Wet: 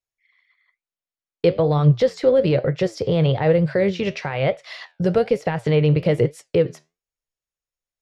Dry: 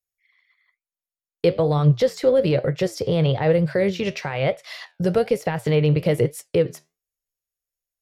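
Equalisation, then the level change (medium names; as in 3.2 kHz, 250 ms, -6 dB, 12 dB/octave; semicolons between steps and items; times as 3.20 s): distance through air 74 m; +1.5 dB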